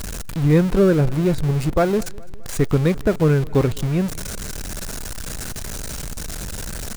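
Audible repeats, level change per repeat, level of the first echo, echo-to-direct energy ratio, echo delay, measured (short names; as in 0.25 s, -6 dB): 3, -5.0 dB, -24.0 dB, -22.5 dB, 0.208 s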